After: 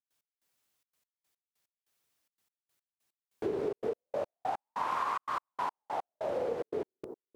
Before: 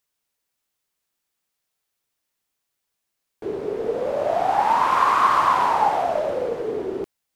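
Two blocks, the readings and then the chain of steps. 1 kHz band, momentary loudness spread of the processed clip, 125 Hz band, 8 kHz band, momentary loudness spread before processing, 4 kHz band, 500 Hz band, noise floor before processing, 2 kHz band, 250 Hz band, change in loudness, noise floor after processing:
−17.0 dB, 6 LU, −11.0 dB, can't be measured, 13 LU, −16.0 dB, −11.0 dB, −80 dBFS, −16.0 dB, −9.5 dB, −15.0 dB, below −85 dBFS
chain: bucket-brigade delay 139 ms, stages 1,024, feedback 60%, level −15 dB
downward compressor 12 to 1, threshold −29 dBFS, peak gain reduction 17 dB
high-pass filter 54 Hz
gate pattern ".x..xxxx.x..x." 145 BPM −60 dB

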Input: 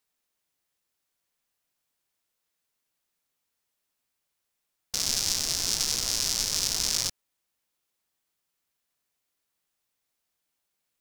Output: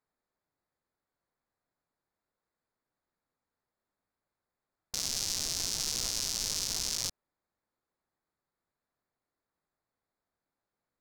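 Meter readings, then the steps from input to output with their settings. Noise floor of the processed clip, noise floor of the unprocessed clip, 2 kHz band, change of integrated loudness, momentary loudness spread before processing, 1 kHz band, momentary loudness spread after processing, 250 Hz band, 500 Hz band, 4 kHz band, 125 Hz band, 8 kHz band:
below −85 dBFS, −81 dBFS, −6.5 dB, −5.5 dB, 4 LU, −6.0 dB, 4 LU, −4.5 dB, −5.0 dB, −6.0 dB, −4.5 dB, −5.5 dB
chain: adaptive Wiener filter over 15 samples
brickwall limiter −18.5 dBFS, peak gain reduction 11 dB
level +2.5 dB

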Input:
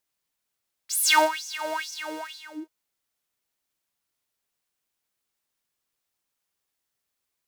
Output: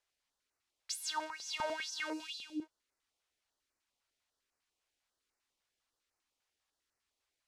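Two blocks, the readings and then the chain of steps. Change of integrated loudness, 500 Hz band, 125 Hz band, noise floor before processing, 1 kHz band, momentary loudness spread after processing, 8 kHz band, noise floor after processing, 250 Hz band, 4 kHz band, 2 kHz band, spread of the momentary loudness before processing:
−15.5 dB, −14.0 dB, can't be measured, −82 dBFS, −15.5 dB, 8 LU, −15.5 dB, below −85 dBFS, −6.5 dB, −12.0 dB, −14.5 dB, 20 LU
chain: gain on a spectral selection 0:02.13–0:02.62, 340–2,200 Hz −18 dB
parametric band 160 Hz −15 dB 0.64 octaves
downward compressor 10 to 1, threshold −33 dBFS, peak gain reduction 18.5 dB
high-frequency loss of the air 68 metres
notch on a step sequencer 10 Hz 260–3,300 Hz
level +1.5 dB

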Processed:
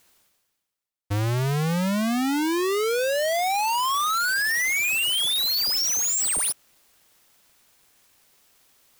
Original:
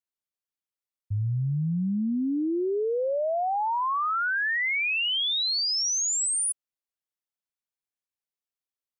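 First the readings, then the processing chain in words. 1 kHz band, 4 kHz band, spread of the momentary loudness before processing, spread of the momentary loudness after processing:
+3.0 dB, +3.0 dB, 5 LU, 4 LU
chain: each half-wave held at its own peak
reversed playback
upward compression, threshold −35 dBFS
reversed playback

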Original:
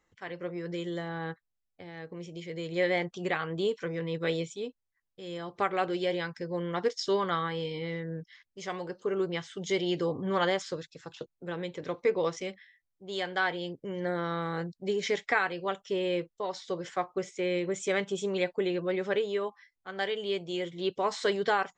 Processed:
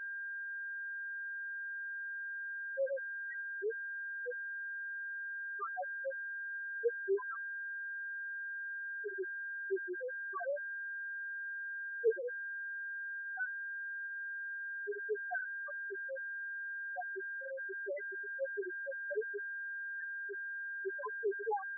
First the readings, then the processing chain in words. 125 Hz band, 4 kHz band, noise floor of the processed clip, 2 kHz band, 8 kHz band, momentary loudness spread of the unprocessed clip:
below −40 dB, below −40 dB, −43 dBFS, +1.0 dB, below −30 dB, 13 LU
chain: harmonic generator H 7 −16 dB, 8 −29 dB, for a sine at −13.5 dBFS
steady tone 1,600 Hz −37 dBFS
spectral peaks only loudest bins 1
level +2.5 dB

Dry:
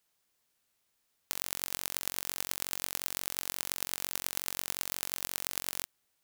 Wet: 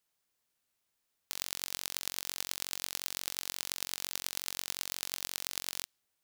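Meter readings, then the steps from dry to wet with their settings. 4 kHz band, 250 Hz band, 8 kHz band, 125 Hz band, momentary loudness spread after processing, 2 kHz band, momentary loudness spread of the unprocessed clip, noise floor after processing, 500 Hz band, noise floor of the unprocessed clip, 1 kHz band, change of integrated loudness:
+2.0 dB, −4.5 dB, −1.0 dB, −4.5 dB, 2 LU, −1.5 dB, 2 LU, −82 dBFS, −4.5 dB, −78 dBFS, −4.0 dB, −2.0 dB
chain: dynamic equaliser 4,300 Hz, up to +7 dB, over −56 dBFS, Q 0.77
level −4.5 dB

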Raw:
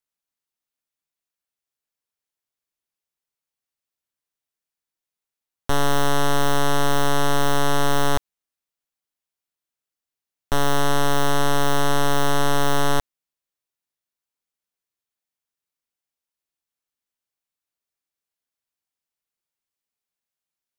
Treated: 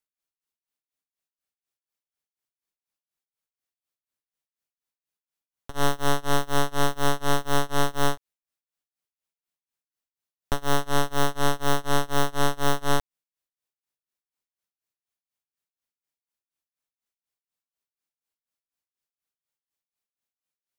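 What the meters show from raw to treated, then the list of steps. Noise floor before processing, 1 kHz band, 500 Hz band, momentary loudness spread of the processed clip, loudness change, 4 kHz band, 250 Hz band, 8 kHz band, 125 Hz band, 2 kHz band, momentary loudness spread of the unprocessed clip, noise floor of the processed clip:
below −85 dBFS, −4.0 dB, −4.0 dB, 3 LU, −4.0 dB, −4.0 dB, −4.0 dB, −4.0 dB, −4.0 dB, −4.0 dB, 3 LU, below −85 dBFS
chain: amplitude tremolo 4.1 Hz, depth 97%

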